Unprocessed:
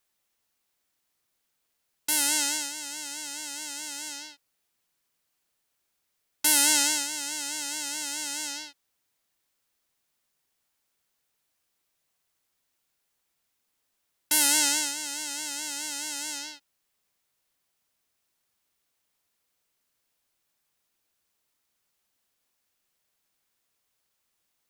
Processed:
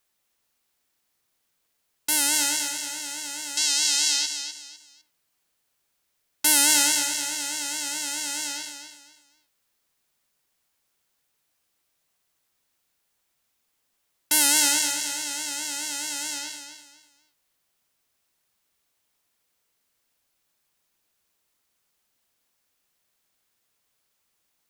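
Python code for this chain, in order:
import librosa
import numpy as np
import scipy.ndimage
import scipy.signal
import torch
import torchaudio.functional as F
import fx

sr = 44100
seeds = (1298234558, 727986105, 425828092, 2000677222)

y = fx.peak_eq(x, sr, hz=4600.0, db=15.0, octaves=2.3, at=(3.57, 4.26))
y = fx.echo_feedback(y, sr, ms=252, feedback_pct=29, wet_db=-8.5)
y = y * librosa.db_to_amplitude(2.5)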